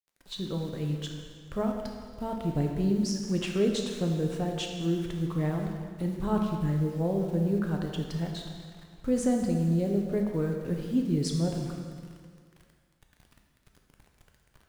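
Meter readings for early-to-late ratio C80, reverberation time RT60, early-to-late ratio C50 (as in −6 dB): 5.0 dB, 1.9 s, 3.5 dB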